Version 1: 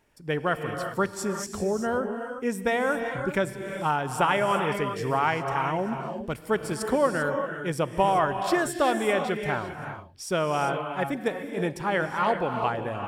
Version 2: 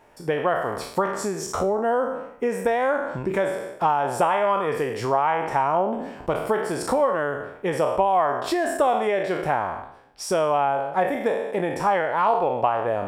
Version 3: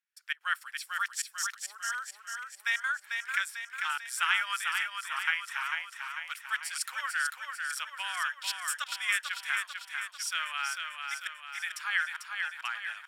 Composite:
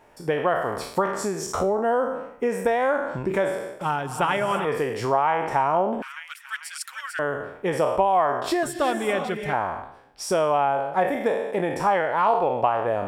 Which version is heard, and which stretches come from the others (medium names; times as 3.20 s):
2
3.81–4.65 s: from 1
6.02–7.19 s: from 3
8.63–9.53 s: from 1